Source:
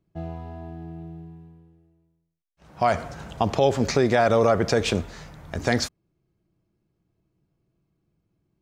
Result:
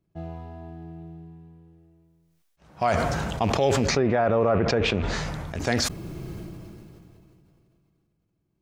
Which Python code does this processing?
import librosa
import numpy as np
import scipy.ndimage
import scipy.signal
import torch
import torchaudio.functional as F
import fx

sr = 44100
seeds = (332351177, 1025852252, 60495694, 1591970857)

y = fx.rattle_buzz(x, sr, strikes_db=-27.0, level_db=-28.0)
y = fx.env_lowpass_down(y, sr, base_hz=1700.0, full_db=-16.5, at=(3.84, 5.47))
y = fx.sustainer(y, sr, db_per_s=21.0)
y = F.gain(torch.from_numpy(y), -3.0).numpy()